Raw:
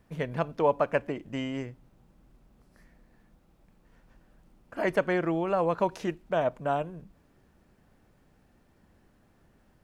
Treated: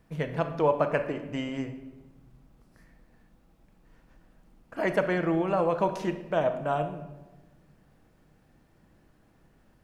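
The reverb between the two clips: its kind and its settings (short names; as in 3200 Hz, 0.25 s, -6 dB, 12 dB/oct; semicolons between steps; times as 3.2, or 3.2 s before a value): shoebox room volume 600 m³, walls mixed, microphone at 0.62 m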